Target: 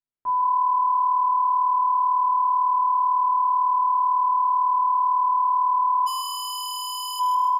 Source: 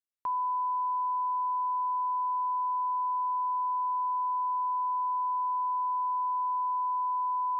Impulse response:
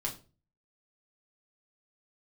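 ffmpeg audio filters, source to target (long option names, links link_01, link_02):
-filter_complex "[1:a]atrim=start_sample=2205[link_01];[0:a][link_01]afir=irnorm=-1:irlink=0,asplit=3[link_02][link_03][link_04];[link_02]afade=type=out:start_time=6.06:duration=0.02[link_05];[link_03]aeval=exprs='0.178*sin(PI/2*8.91*val(0)/0.178)':channel_layout=same,afade=type=in:start_time=6.06:duration=0.02,afade=type=out:start_time=7.19:duration=0.02[link_06];[link_04]afade=type=in:start_time=7.19:duration=0.02[link_07];[link_05][link_06][link_07]amix=inputs=3:normalize=0,lowpass=frequency=1000:poles=1,asplit=5[link_08][link_09][link_10][link_11][link_12];[link_09]adelay=146,afreqshift=38,volume=-8.5dB[link_13];[link_10]adelay=292,afreqshift=76,volume=-16.9dB[link_14];[link_11]adelay=438,afreqshift=114,volume=-25.3dB[link_15];[link_12]adelay=584,afreqshift=152,volume=-33.7dB[link_16];[link_08][link_13][link_14][link_15][link_16]amix=inputs=5:normalize=0"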